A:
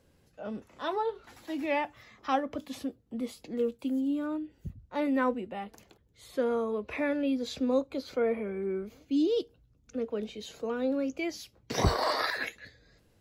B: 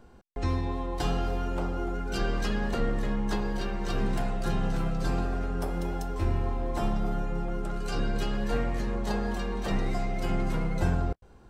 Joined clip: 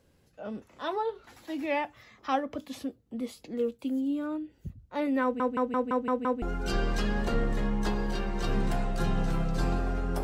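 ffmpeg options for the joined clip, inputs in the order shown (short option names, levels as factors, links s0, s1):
-filter_complex "[0:a]apad=whole_dur=10.23,atrim=end=10.23,asplit=7[s0][s1][s2][s3][s4][s5][s6];[s0]atrim=end=5.402[s7];[s1]atrim=start=5.228:end=5.402[s8];[s2]atrim=start=5.228:end=5.402[s9];[s3]atrim=start=5.228:end=5.402[s10];[s4]atrim=start=5.228:end=5.402[s11];[s5]atrim=start=5.228:end=5.402[s12];[s6]atrim=start=5.228:end=5.402[s13];[1:a]atrim=start=1.878:end=5.69[s14];[s7][s8]acrossfade=d=0.004:c1=hsin:c2=hsin[s15];[s15][s9]acrossfade=d=0.004:c1=hsin:c2=hsin[s16];[s16][s10]acrossfade=d=0.004:c1=hsin:c2=hsin[s17];[s17][s11]acrossfade=d=0.004:c1=hsin:c2=hsin[s18];[s18][s12]acrossfade=d=0.004:c1=hsin:c2=hsin[s19];[s19][s13]acrossfade=d=0.004:c1=hsin:c2=hsin[s20];[s20][s14]acrossfade=d=0.004:c1=hsin:c2=hsin"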